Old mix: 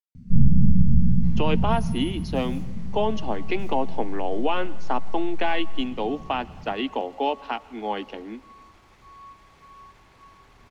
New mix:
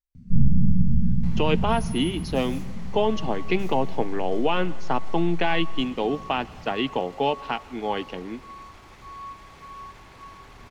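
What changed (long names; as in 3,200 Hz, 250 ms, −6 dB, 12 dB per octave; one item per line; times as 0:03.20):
speech: remove Chebyshev high-pass with heavy ripple 200 Hz, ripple 3 dB
first sound: send −11.5 dB
second sound +7.0 dB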